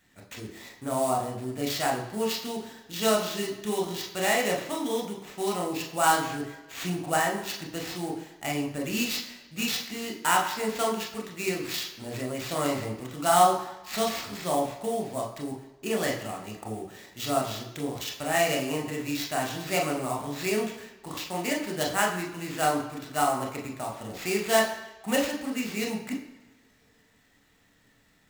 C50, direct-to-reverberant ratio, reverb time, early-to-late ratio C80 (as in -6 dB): 7.0 dB, -0.5 dB, no single decay rate, 9.5 dB